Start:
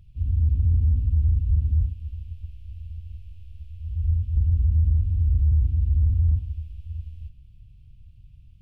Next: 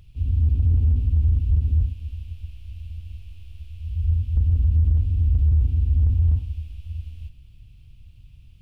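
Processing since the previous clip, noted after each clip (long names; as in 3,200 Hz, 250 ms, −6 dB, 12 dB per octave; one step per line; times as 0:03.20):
drawn EQ curve 180 Hz 0 dB, 260 Hz +5 dB, 430 Hz +8 dB
level +1.5 dB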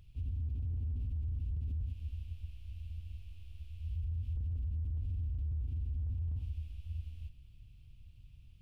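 brickwall limiter −23 dBFS, peak gain reduction 11.5 dB
level −8.5 dB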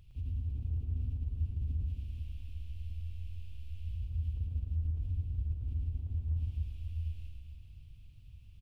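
reverse bouncing-ball delay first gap 110 ms, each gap 1.4×, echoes 5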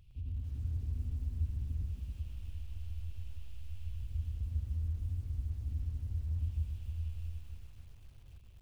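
feedback echo at a low word length 280 ms, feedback 35%, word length 10 bits, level −5.5 dB
level −2.5 dB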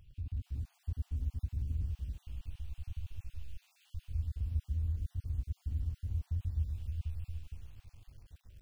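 time-frequency cells dropped at random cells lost 30%
level +1.5 dB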